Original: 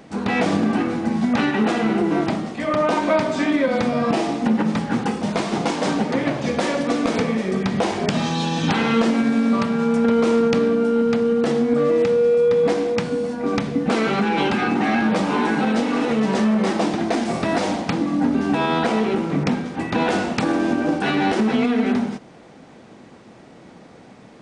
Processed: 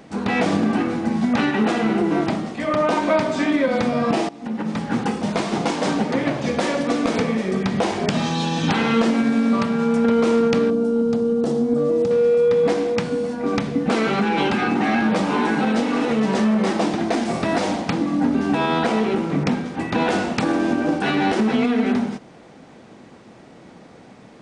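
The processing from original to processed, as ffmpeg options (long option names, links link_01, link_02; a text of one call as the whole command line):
ffmpeg -i in.wav -filter_complex "[0:a]asettb=1/sr,asplit=3[link_01][link_02][link_03];[link_01]atrim=end=10.704[link_04];[link_02]atrim=start=10.7:end=12.11,asetpts=PTS-STARTPTS,afade=type=in:duration=0.004:curve=qsin,afade=type=out:start_time=1.406:duration=0.004:curve=qsin,equalizer=frequency=2100:width=0.81:gain=-15[link_05];[link_03]atrim=start=12.106[link_06];[link_04][link_05]acrossfade=duration=0.004:curve1=hsin:curve2=qsin[link_07];[link_07][link_06]acrossfade=duration=0.004:curve1=qsin:curve2=hsin,asplit=2[link_08][link_09];[link_08]atrim=end=4.29,asetpts=PTS-STARTPTS,afade=type=out:start_time=4.286:duration=0.004:curve=hsin:silence=0.0891251[link_10];[link_09]atrim=start=4.29,asetpts=PTS-STARTPTS,afade=type=in:duration=0.7:silence=0.0891251[link_11];[link_10][link_11]concat=n=2:v=0:a=1" out.wav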